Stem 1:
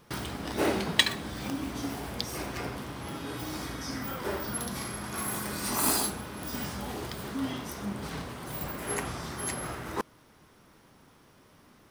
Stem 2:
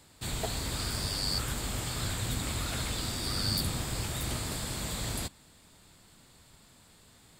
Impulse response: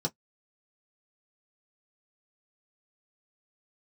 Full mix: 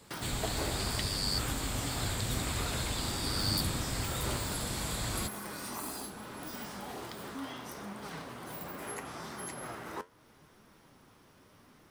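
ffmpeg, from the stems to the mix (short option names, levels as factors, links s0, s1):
-filter_complex "[0:a]acrossover=split=150|530[s0][s1][s2];[s0]acompressor=threshold=0.00126:ratio=4[s3];[s1]acompressor=threshold=0.00631:ratio=4[s4];[s2]acompressor=threshold=0.0158:ratio=4[s5];[s3][s4][s5]amix=inputs=3:normalize=0,flanger=delay=4.2:depth=7.7:regen=71:speed=0.75:shape=triangular,adynamicequalizer=threshold=0.00141:dfrequency=1700:dqfactor=0.7:tfrequency=1700:tqfactor=0.7:attack=5:release=100:ratio=0.375:range=1.5:mode=cutabove:tftype=highshelf,volume=1.33[s6];[1:a]volume=0.891[s7];[s6][s7]amix=inputs=2:normalize=0"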